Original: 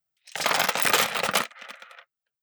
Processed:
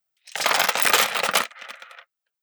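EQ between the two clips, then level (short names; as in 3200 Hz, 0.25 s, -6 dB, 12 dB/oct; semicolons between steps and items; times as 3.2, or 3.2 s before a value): low shelf 240 Hz -11 dB; +3.5 dB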